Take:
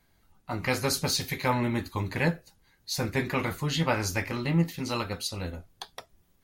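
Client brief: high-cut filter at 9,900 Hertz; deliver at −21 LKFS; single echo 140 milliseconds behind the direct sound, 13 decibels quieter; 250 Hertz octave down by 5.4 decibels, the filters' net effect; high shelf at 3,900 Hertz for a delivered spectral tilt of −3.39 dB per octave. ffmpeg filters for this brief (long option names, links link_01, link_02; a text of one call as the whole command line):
ffmpeg -i in.wav -af "lowpass=9900,equalizer=frequency=250:width_type=o:gain=-8.5,highshelf=frequency=3900:gain=4,aecho=1:1:140:0.224,volume=8.5dB" out.wav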